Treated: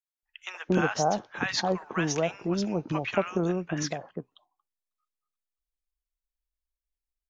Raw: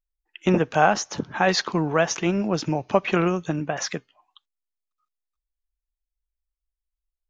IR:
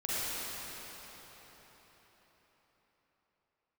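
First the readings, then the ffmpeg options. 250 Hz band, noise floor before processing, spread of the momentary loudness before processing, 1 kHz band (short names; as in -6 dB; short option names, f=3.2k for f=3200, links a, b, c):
-5.0 dB, under -85 dBFS, 8 LU, -7.5 dB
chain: -filter_complex "[0:a]acrossover=split=990[a][b];[a]adelay=230[c];[c][b]amix=inputs=2:normalize=0,volume=-5dB"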